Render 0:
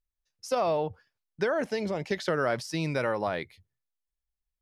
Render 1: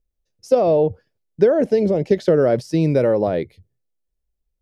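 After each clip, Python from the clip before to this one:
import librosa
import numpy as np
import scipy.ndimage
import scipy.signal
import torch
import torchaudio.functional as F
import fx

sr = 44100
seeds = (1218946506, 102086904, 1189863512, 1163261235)

y = fx.low_shelf_res(x, sr, hz=730.0, db=12.0, q=1.5)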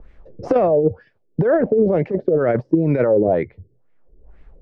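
y = fx.over_compress(x, sr, threshold_db=-18.0, ratio=-0.5)
y = fx.filter_lfo_lowpass(y, sr, shape='sine', hz=2.1, low_hz=360.0, high_hz=2100.0, q=2.7)
y = fx.band_squash(y, sr, depth_pct=100)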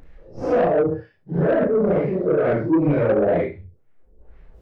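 y = fx.phase_scramble(x, sr, seeds[0], window_ms=200)
y = fx.room_flutter(y, sr, wall_m=5.9, rt60_s=0.21)
y = 10.0 ** (-12.0 / 20.0) * np.tanh(y / 10.0 ** (-12.0 / 20.0))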